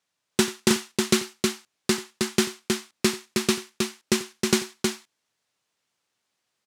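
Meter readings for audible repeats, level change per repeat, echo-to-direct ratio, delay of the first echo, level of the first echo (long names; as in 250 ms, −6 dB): 2, repeats not evenly spaced, −3.5 dB, 89 ms, −18.0 dB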